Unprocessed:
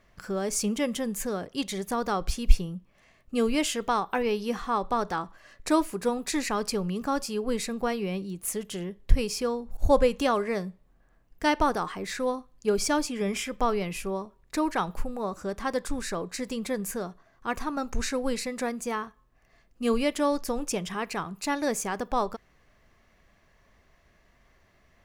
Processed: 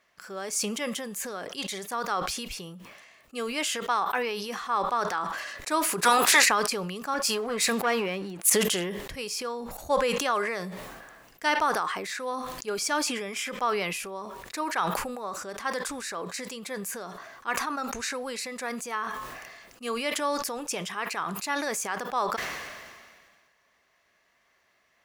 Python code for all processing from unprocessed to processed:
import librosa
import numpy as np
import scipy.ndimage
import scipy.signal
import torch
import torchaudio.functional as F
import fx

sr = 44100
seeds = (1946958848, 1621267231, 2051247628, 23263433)

y = fx.spec_clip(x, sr, under_db=18, at=(6.02, 6.44), fade=0.02)
y = fx.highpass(y, sr, hz=74.0, slope=12, at=(6.02, 6.44), fade=0.02)
y = fx.env_flatten(y, sr, amount_pct=50, at=(6.02, 6.44), fade=0.02)
y = fx.chain(y, sr, fx.leveller(passes=2),
    fx.band_widen(depth_pct=100), at=(7.14, 8.5))
y = fx.highpass(y, sr, hz=990.0, slope=6)
y = fx.dynamic_eq(y, sr, hz=1400.0, q=1.1, threshold_db=-40.0, ratio=4.0, max_db=4)
y = fx.sustainer(y, sr, db_per_s=32.0)